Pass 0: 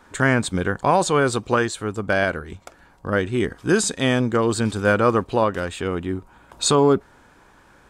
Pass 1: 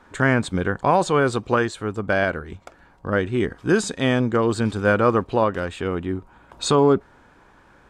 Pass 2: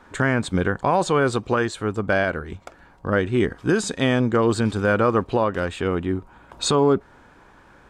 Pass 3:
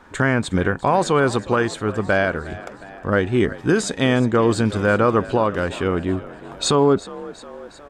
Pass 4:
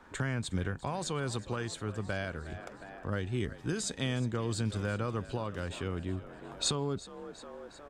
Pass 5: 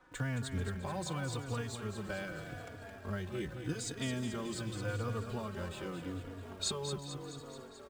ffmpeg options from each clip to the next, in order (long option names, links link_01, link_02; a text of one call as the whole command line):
ffmpeg -i in.wav -af "highshelf=frequency=5600:gain=-11" out.wav
ffmpeg -i in.wav -af "alimiter=limit=-11dB:level=0:latency=1:release=190,volume=2dB" out.wav
ffmpeg -i in.wav -filter_complex "[0:a]asplit=7[link_01][link_02][link_03][link_04][link_05][link_06][link_07];[link_02]adelay=361,afreqshift=49,volume=-18dB[link_08];[link_03]adelay=722,afreqshift=98,volume=-22.2dB[link_09];[link_04]adelay=1083,afreqshift=147,volume=-26.3dB[link_10];[link_05]adelay=1444,afreqshift=196,volume=-30.5dB[link_11];[link_06]adelay=1805,afreqshift=245,volume=-34.6dB[link_12];[link_07]adelay=2166,afreqshift=294,volume=-38.8dB[link_13];[link_01][link_08][link_09][link_10][link_11][link_12][link_13]amix=inputs=7:normalize=0,volume=2dB" out.wav
ffmpeg -i in.wav -filter_complex "[0:a]acrossover=split=150|3000[link_01][link_02][link_03];[link_02]acompressor=threshold=-35dB:ratio=2[link_04];[link_01][link_04][link_03]amix=inputs=3:normalize=0,volume=-8dB" out.wav
ffmpeg -i in.wav -filter_complex "[0:a]asplit=2[link_01][link_02];[link_02]acrusher=bits=6:mix=0:aa=0.000001,volume=-10.5dB[link_03];[link_01][link_03]amix=inputs=2:normalize=0,aecho=1:1:218|436|654|872|1090|1308|1526|1744:0.398|0.239|0.143|0.086|0.0516|0.031|0.0186|0.0111,asplit=2[link_04][link_05];[link_05]adelay=3.5,afreqshift=-0.84[link_06];[link_04][link_06]amix=inputs=2:normalize=1,volume=-4dB" out.wav